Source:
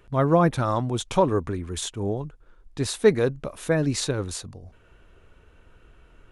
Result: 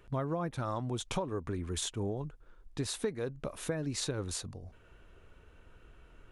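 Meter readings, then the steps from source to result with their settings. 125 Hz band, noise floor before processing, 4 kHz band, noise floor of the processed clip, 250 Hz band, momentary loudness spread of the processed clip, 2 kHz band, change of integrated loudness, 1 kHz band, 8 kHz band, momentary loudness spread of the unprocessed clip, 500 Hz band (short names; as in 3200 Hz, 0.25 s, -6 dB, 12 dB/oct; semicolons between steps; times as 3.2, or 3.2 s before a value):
-10.5 dB, -56 dBFS, -6.5 dB, -59 dBFS, -11.5 dB, 9 LU, -12.5 dB, -12.0 dB, -13.5 dB, -6.0 dB, 14 LU, -14.0 dB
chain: compressor 12:1, threshold -27 dBFS, peak gain reduction 16.5 dB; gain -3.5 dB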